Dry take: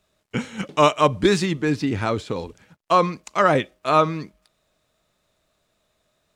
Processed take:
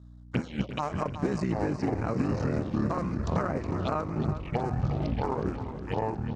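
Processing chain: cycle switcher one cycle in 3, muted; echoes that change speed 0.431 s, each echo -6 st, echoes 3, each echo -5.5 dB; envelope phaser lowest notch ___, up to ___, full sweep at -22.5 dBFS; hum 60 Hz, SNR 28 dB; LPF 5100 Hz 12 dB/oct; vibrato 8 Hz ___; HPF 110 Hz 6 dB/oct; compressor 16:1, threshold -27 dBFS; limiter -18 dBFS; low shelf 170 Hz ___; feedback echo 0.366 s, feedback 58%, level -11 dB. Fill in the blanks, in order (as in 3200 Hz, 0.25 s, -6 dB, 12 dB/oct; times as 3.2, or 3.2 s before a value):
420 Hz, 3400 Hz, 14 cents, +11 dB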